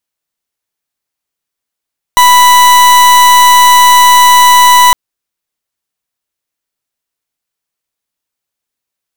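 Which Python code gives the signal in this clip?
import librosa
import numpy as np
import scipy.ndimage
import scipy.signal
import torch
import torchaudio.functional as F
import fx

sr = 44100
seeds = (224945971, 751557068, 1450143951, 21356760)

y = fx.pulse(sr, length_s=2.76, hz=988.0, level_db=-4.0, duty_pct=40)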